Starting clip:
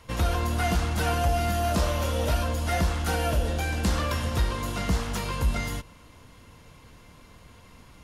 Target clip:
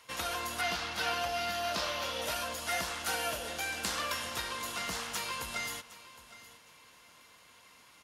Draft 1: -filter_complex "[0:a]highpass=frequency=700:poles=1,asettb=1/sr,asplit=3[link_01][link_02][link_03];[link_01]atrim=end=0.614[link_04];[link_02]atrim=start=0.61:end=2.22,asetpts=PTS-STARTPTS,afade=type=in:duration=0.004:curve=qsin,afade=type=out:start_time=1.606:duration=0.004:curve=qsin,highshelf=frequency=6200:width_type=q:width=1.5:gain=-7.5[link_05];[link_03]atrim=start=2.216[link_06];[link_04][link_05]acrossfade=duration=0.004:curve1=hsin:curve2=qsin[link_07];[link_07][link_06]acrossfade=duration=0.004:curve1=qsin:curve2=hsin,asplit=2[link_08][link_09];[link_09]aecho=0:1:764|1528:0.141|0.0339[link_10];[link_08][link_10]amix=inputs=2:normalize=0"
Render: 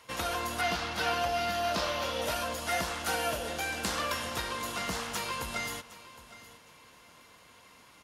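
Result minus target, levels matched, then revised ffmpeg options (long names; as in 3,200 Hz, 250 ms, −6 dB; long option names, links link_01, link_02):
500 Hz band +2.5 dB
-filter_complex "[0:a]highpass=frequency=1500:poles=1,asettb=1/sr,asplit=3[link_01][link_02][link_03];[link_01]atrim=end=0.614[link_04];[link_02]atrim=start=0.61:end=2.22,asetpts=PTS-STARTPTS,afade=type=in:duration=0.004:curve=qsin,afade=type=out:start_time=1.606:duration=0.004:curve=qsin,highshelf=frequency=6200:width_type=q:width=1.5:gain=-7.5[link_05];[link_03]atrim=start=2.216[link_06];[link_04][link_05]acrossfade=duration=0.004:curve1=hsin:curve2=qsin[link_07];[link_07][link_06]acrossfade=duration=0.004:curve1=qsin:curve2=hsin,asplit=2[link_08][link_09];[link_09]aecho=0:1:764|1528:0.141|0.0339[link_10];[link_08][link_10]amix=inputs=2:normalize=0"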